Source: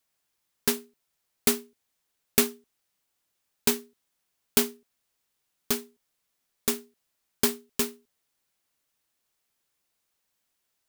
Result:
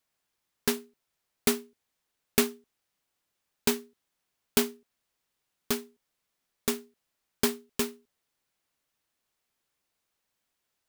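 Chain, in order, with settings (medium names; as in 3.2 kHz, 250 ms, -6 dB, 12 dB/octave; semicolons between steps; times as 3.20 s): treble shelf 5 kHz -5.5 dB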